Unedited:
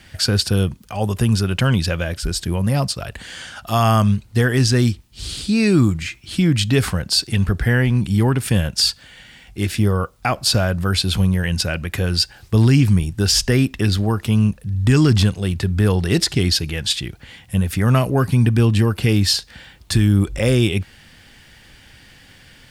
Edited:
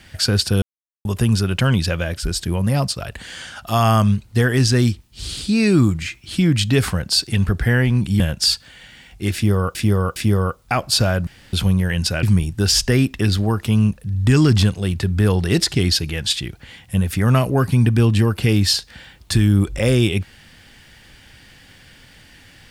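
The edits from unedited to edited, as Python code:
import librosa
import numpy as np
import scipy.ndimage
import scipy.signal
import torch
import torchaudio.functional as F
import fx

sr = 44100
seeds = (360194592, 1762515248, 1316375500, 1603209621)

y = fx.edit(x, sr, fx.silence(start_s=0.62, length_s=0.43),
    fx.cut(start_s=8.2, length_s=0.36),
    fx.repeat(start_s=9.7, length_s=0.41, count=3),
    fx.room_tone_fill(start_s=10.81, length_s=0.26),
    fx.cut(start_s=11.77, length_s=1.06), tone=tone)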